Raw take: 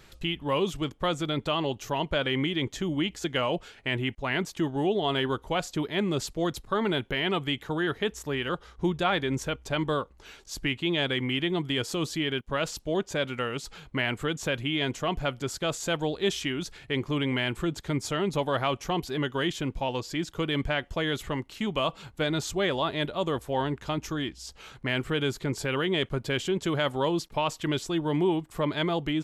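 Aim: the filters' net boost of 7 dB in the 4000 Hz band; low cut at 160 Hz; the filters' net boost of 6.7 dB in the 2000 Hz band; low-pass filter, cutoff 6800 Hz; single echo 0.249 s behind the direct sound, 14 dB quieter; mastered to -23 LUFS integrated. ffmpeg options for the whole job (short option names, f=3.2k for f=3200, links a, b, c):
-af "highpass=160,lowpass=6.8k,equalizer=f=2k:t=o:g=6.5,equalizer=f=4k:t=o:g=7,aecho=1:1:249:0.2,volume=2.5dB"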